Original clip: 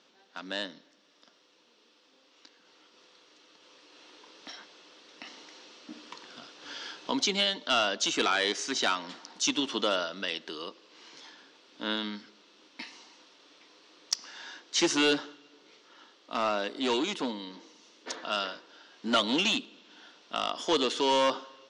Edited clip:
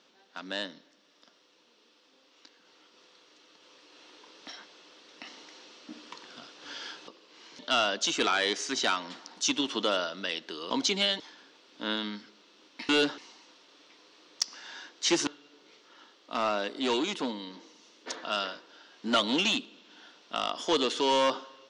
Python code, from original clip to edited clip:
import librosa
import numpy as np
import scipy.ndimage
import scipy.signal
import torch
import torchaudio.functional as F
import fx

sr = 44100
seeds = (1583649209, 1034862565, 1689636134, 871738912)

y = fx.edit(x, sr, fx.swap(start_s=7.08, length_s=0.5, other_s=10.69, other_length_s=0.51),
    fx.move(start_s=14.98, length_s=0.29, to_s=12.89), tone=tone)